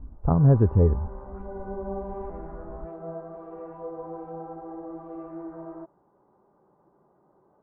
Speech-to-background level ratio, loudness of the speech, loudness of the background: 18.0 dB, -21.0 LUFS, -39.0 LUFS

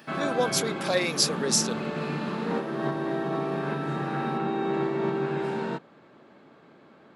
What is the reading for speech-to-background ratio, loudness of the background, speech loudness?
4.0 dB, -30.0 LUFS, -26.0 LUFS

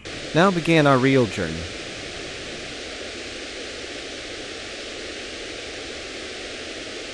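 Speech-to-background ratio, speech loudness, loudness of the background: 13.0 dB, -19.0 LUFS, -32.0 LUFS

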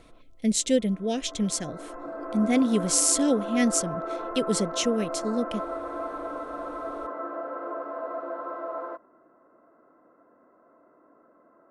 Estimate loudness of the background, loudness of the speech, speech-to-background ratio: -34.5 LUFS, -25.5 LUFS, 9.0 dB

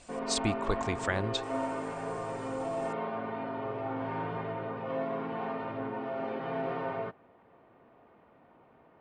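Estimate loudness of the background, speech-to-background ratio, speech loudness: -36.0 LUFS, 2.5 dB, -33.5 LUFS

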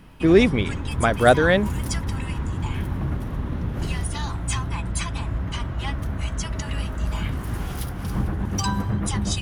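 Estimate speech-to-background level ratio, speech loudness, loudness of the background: 9.0 dB, -19.0 LUFS, -28.0 LUFS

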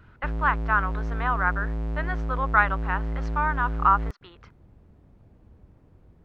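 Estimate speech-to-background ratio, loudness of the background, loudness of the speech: 5.5 dB, -31.5 LUFS, -26.0 LUFS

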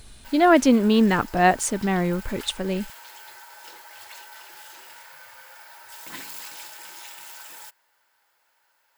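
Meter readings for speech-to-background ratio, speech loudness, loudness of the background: 20.0 dB, -20.5 LUFS, -40.5 LUFS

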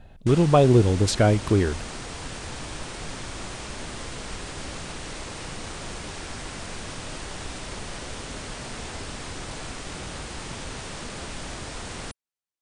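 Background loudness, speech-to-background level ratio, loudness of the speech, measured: -35.5 LUFS, 15.5 dB, -20.0 LUFS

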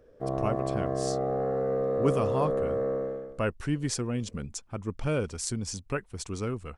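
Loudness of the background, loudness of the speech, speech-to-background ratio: -30.0 LUFS, -33.0 LUFS, -3.0 dB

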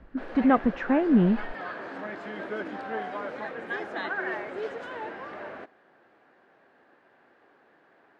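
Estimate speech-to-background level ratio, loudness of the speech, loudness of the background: 11.5 dB, -24.0 LUFS, -35.5 LUFS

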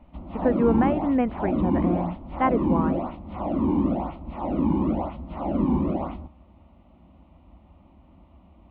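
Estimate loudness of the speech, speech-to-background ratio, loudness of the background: -26.0 LUFS, 0.5 dB, -26.5 LUFS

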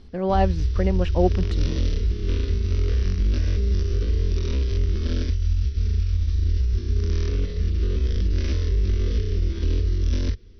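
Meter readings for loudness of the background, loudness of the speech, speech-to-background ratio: -24.5 LUFS, -25.5 LUFS, -1.0 dB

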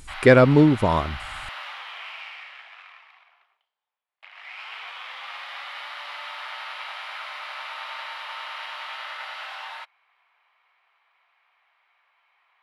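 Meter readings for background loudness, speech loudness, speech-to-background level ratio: -35.5 LUFS, -17.0 LUFS, 18.5 dB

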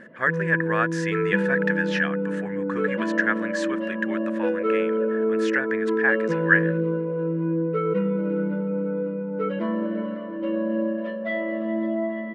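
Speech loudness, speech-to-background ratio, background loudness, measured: -26.5 LUFS, -0.5 dB, -26.0 LUFS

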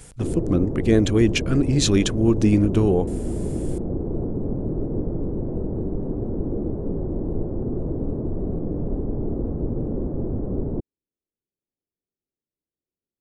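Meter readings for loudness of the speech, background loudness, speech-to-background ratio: -20.5 LUFS, -28.0 LUFS, 7.5 dB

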